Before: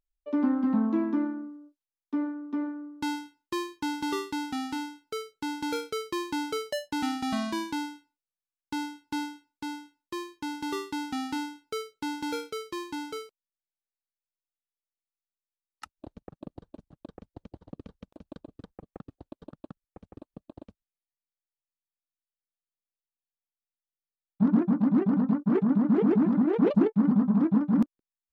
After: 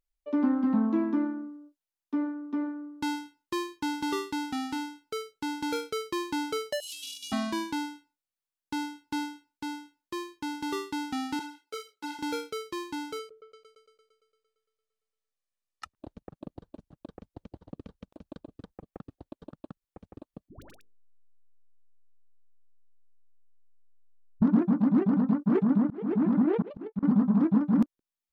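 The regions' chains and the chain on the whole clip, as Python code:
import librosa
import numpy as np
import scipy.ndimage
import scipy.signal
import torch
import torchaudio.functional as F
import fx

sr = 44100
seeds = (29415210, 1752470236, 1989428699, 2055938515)

y = fx.chain(x, sr, fx.delta_mod(bps=64000, step_db=-29.5),
    fx.ellip_highpass(hz=2800.0, order=4, stop_db=40),
    fx.comb(ms=3.5, depth=0.36), at=(6.8, 7.32))
y = fx.chain(y, sr, fx.highpass(hz=350.0, slope=12),
    fx.ensemble(), at=(11.39, 12.19))
y = fx.chain(y, sr, fx.lowpass(hz=9800.0, slope=12),
    fx.comb(ms=1.7, depth=0.52),
    fx.echo_opening(ms=114, hz=400, octaves=2, feedback_pct=70, wet_db=-6), at=(13.19, 15.95))
y = fx.chain(y, sr, fx.delta_hold(step_db=-36.5),
    fx.hum_notches(base_hz=50, count=10),
    fx.dispersion(late='highs', ms=123.0, hz=650.0), at=(20.49, 24.42))
y = fx.chain(y, sr, fx.lowpass(hz=4300.0, slope=12),
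    fx.auto_swell(attack_ms=403.0), at=(25.8, 27.03))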